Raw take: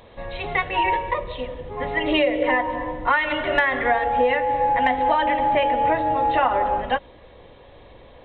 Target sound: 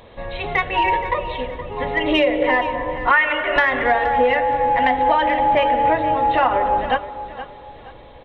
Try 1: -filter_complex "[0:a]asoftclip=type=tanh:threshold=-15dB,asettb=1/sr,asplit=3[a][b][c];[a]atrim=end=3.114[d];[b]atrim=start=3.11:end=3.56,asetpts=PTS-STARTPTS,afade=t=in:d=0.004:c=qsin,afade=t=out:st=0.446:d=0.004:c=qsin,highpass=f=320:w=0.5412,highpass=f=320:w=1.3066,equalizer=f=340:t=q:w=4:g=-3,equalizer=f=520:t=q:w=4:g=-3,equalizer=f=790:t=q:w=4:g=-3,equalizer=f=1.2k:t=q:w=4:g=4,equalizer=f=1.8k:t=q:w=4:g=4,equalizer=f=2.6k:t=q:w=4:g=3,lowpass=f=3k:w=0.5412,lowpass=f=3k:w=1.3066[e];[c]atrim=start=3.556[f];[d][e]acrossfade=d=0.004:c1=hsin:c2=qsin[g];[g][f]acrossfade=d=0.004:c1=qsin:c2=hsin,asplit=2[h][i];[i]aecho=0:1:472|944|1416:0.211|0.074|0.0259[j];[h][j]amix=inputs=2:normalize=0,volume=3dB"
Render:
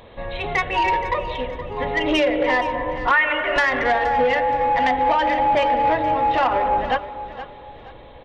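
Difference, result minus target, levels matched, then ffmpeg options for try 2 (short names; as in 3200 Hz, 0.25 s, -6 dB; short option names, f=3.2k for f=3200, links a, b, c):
soft clip: distortion +14 dB
-filter_complex "[0:a]asoftclip=type=tanh:threshold=-6dB,asettb=1/sr,asplit=3[a][b][c];[a]atrim=end=3.114[d];[b]atrim=start=3.11:end=3.56,asetpts=PTS-STARTPTS,afade=t=in:d=0.004:c=qsin,afade=t=out:st=0.446:d=0.004:c=qsin,highpass=f=320:w=0.5412,highpass=f=320:w=1.3066,equalizer=f=340:t=q:w=4:g=-3,equalizer=f=520:t=q:w=4:g=-3,equalizer=f=790:t=q:w=4:g=-3,equalizer=f=1.2k:t=q:w=4:g=4,equalizer=f=1.8k:t=q:w=4:g=4,equalizer=f=2.6k:t=q:w=4:g=3,lowpass=f=3k:w=0.5412,lowpass=f=3k:w=1.3066[e];[c]atrim=start=3.556[f];[d][e]acrossfade=d=0.004:c1=hsin:c2=qsin[g];[g][f]acrossfade=d=0.004:c1=qsin:c2=hsin,asplit=2[h][i];[i]aecho=0:1:472|944|1416:0.211|0.074|0.0259[j];[h][j]amix=inputs=2:normalize=0,volume=3dB"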